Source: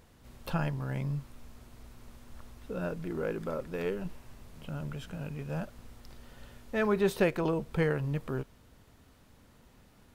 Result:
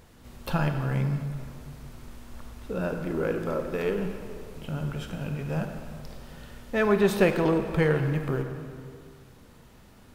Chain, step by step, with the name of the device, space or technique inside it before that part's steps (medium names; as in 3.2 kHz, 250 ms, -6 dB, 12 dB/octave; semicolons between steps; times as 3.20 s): saturated reverb return (on a send at -4 dB: reverberation RT60 2.1 s, pre-delay 21 ms + saturation -27.5 dBFS, distortion -12 dB); on the sum: trim +5 dB